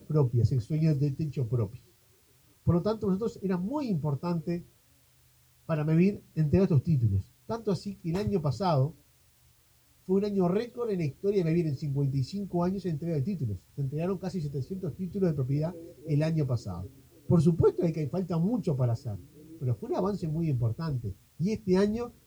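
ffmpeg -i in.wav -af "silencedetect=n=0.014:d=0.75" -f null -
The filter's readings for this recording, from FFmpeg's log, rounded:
silence_start: 1.76
silence_end: 2.67 | silence_duration: 0.91
silence_start: 4.60
silence_end: 5.69 | silence_duration: 1.10
silence_start: 8.90
silence_end: 10.09 | silence_duration: 1.19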